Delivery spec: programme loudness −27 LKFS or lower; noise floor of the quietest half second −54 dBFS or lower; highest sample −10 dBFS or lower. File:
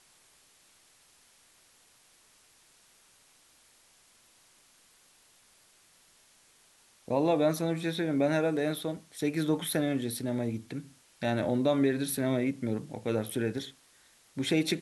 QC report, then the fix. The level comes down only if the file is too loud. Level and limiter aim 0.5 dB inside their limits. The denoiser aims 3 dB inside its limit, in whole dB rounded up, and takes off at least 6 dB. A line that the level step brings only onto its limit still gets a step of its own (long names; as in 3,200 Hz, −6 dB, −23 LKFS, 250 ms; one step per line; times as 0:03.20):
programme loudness −30.5 LKFS: in spec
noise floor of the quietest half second −63 dBFS: in spec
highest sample −15.0 dBFS: in spec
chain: no processing needed